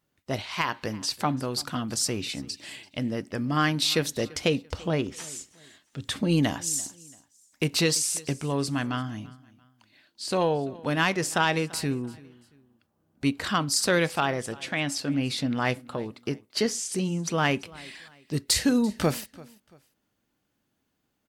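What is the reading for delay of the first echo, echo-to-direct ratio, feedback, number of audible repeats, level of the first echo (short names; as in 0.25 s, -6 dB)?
0.339 s, -21.5 dB, 33%, 2, -22.0 dB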